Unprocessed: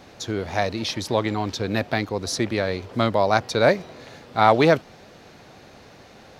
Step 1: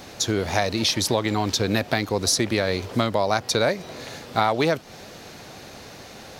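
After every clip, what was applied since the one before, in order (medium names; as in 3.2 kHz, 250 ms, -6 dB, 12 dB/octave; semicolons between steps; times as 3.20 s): treble shelf 5.1 kHz +11 dB; compression 6:1, threshold -22 dBFS, peak gain reduction 12 dB; crackle 57 per s -57 dBFS; trim +4.5 dB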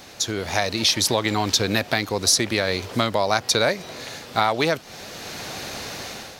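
tilt shelf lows -3 dB; level rider gain up to 11 dB; trim -2.5 dB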